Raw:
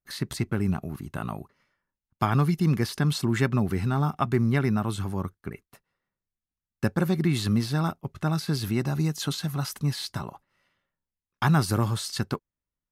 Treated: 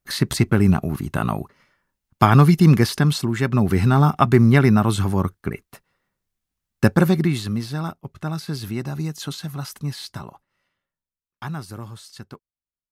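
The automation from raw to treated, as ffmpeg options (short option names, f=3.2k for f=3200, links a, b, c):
-af "volume=19dB,afade=t=out:st=2.72:d=0.65:silence=0.334965,afade=t=in:st=3.37:d=0.44:silence=0.354813,afade=t=out:st=6.96:d=0.47:silence=0.298538,afade=t=out:st=10.28:d=1.36:silence=0.334965"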